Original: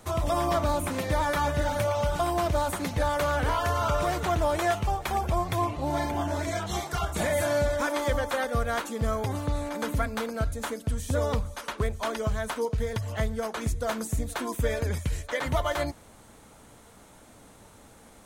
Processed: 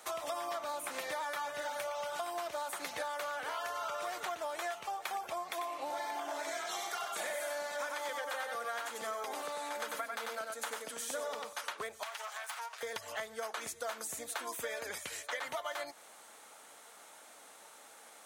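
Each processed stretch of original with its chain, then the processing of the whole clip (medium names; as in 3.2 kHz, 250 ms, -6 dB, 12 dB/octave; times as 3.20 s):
5.50–11.53 s: high-pass 180 Hz 24 dB/octave + delay 94 ms -4 dB
12.03–12.83 s: comb filter that takes the minimum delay 7.2 ms + high-pass 730 Hz 24 dB/octave + compression, threshold -37 dBFS
whole clip: high-pass 710 Hz 12 dB/octave; band-stop 1 kHz, Q 16; compression, threshold -37 dBFS; trim +1 dB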